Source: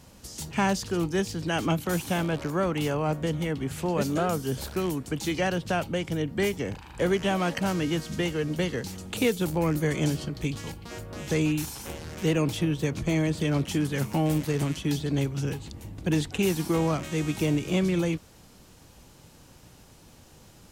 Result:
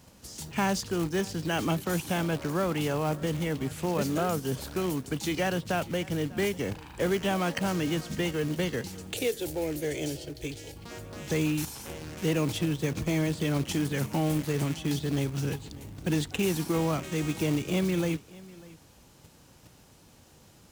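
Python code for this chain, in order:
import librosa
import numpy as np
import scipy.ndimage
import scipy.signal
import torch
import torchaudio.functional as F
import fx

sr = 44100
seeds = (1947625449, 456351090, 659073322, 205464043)

p1 = fx.highpass(x, sr, hz=50.0, slope=6)
p2 = fx.level_steps(p1, sr, step_db=17)
p3 = p1 + (p2 * librosa.db_to_amplitude(0.0))
p4 = fx.fixed_phaser(p3, sr, hz=470.0, stages=4, at=(9.13, 10.76))
p5 = fx.quant_float(p4, sr, bits=2)
p6 = p5 + fx.echo_single(p5, sr, ms=596, db=-21.0, dry=0)
y = p6 * librosa.db_to_amplitude(-4.5)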